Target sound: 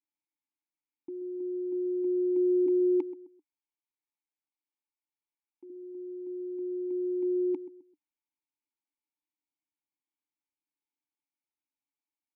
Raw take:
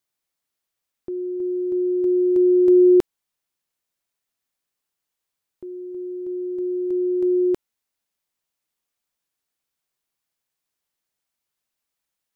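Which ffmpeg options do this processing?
-filter_complex "[0:a]asettb=1/sr,asplit=3[s0][s1][s2];[s0]atrim=end=2.664[s3];[s1]atrim=start=2.66:end=5.7,asetpts=PTS-STARTPTS,afade=t=in:d=0.004:c=qsin,afade=t=out:st=3.036:d=0.004:c=qsin,bass=f=250:g=-13,treble=f=4000:g=-1[s4];[s2]atrim=start=5.696[s5];[s3][s4]acrossfade=d=0.004:c1=hsin:c2=qsin[s6];[s6][s5]acrossfade=d=0.004:c1=qsin:c2=hsin,asplit=3[s7][s8][s9];[s7]bandpass=f=300:t=q:w=8,volume=1[s10];[s8]bandpass=f=870:t=q:w=8,volume=0.501[s11];[s9]bandpass=f=2240:t=q:w=8,volume=0.355[s12];[s10][s11][s12]amix=inputs=3:normalize=0,asplit=2[s13][s14];[s14]adelay=130,lowpass=f=820:p=1,volume=0.2,asplit=2[s15][s16];[s16]adelay=130,lowpass=f=820:p=1,volume=0.36,asplit=2[s17][s18];[s18]adelay=130,lowpass=f=820:p=1,volume=0.36[s19];[s13][s15][s17][s19]amix=inputs=4:normalize=0"

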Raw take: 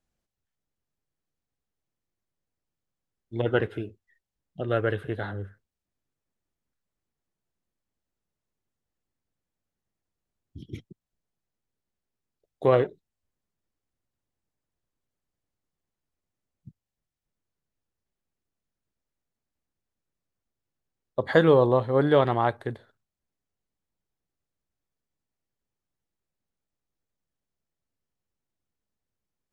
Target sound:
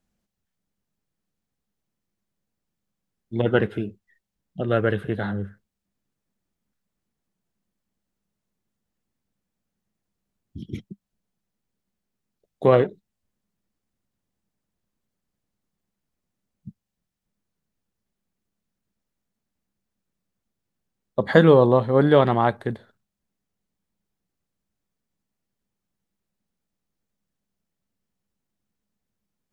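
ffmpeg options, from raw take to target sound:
-af "equalizer=f=200:t=o:w=0.43:g=10.5,volume=1.5"

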